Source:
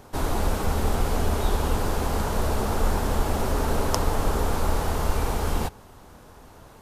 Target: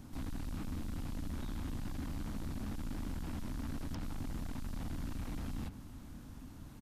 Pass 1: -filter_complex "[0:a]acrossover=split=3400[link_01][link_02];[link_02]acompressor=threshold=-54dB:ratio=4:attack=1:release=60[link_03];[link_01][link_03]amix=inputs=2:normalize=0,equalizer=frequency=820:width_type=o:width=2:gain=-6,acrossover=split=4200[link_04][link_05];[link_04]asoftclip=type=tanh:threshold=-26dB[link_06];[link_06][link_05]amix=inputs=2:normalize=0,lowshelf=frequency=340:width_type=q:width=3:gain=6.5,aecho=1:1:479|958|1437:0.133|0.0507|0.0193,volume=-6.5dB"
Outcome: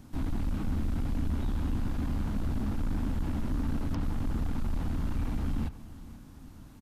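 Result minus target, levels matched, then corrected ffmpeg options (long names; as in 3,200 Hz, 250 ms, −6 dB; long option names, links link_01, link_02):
echo 269 ms early; soft clipping: distortion −5 dB
-filter_complex "[0:a]acrossover=split=3400[link_01][link_02];[link_02]acompressor=threshold=-54dB:ratio=4:attack=1:release=60[link_03];[link_01][link_03]amix=inputs=2:normalize=0,equalizer=frequency=820:width_type=o:width=2:gain=-6,acrossover=split=4200[link_04][link_05];[link_04]asoftclip=type=tanh:threshold=-38dB[link_06];[link_06][link_05]amix=inputs=2:normalize=0,lowshelf=frequency=340:width_type=q:width=3:gain=6.5,aecho=1:1:748|1496|2244:0.133|0.0507|0.0193,volume=-6.5dB"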